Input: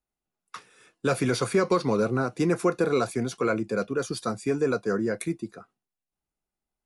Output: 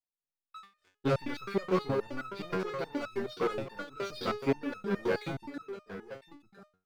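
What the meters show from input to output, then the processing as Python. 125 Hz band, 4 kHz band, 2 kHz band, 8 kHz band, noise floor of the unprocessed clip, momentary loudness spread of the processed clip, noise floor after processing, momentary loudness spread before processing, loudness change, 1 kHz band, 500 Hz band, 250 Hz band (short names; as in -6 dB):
-7.5 dB, -5.5 dB, -6.5 dB, -18.0 dB, under -85 dBFS, 15 LU, under -85 dBFS, 11 LU, -8.0 dB, -6.5 dB, -7.5 dB, -8.0 dB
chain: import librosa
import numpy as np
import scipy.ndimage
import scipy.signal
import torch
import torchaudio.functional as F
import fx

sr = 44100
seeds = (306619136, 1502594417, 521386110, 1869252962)

y = scipy.signal.sosfilt(scipy.signal.butter(6, 4600.0, 'lowpass', fs=sr, output='sos'), x)
y = fx.rider(y, sr, range_db=10, speed_s=0.5)
y = fx.leveller(y, sr, passes=3)
y = y + 10.0 ** (-11.0 / 20.0) * np.pad(y, (int(1007 * sr / 1000.0), 0))[:len(y)]
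y = fx.resonator_held(y, sr, hz=9.5, low_hz=93.0, high_hz=1300.0)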